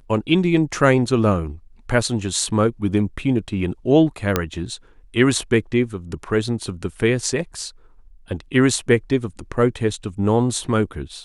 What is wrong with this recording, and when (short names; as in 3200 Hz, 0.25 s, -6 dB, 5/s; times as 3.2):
4.36 pop -3 dBFS